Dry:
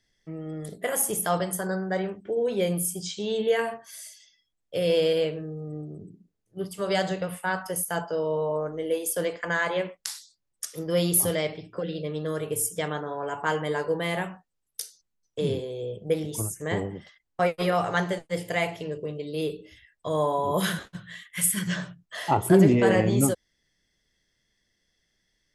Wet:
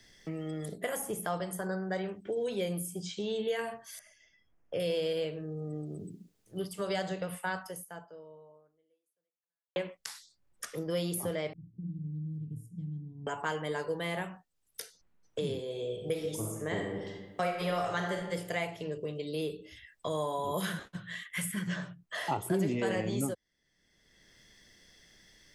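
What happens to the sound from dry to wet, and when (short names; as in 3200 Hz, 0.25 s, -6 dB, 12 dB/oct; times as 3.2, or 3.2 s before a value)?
3.99–4.8 running mean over 11 samples
7.57–9.76 fade out exponential
11.53–13.27 inverse Chebyshev low-pass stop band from 510 Hz, stop band 50 dB
15.62–18.19 reverb throw, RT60 0.92 s, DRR 2 dB
whole clip: three-band squash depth 70%; gain -7.5 dB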